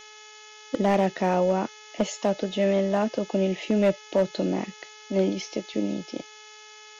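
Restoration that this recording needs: clip repair -14.5 dBFS; de-hum 427 Hz, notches 8; noise reduction 23 dB, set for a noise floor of -47 dBFS

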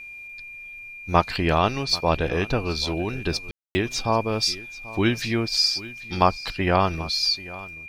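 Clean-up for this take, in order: band-stop 2.4 kHz, Q 30; room tone fill 3.51–3.75 s; inverse comb 787 ms -18.5 dB

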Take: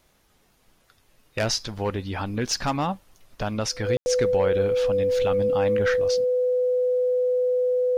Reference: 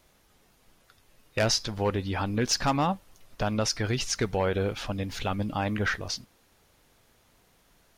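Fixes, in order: band-stop 500 Hz, Q 30; room tone fill 3.97–4.06 s

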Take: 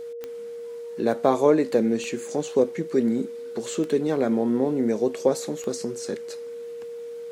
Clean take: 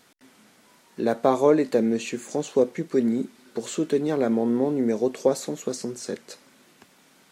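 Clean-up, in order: de-click; band-stop 470 Hz, Q 30

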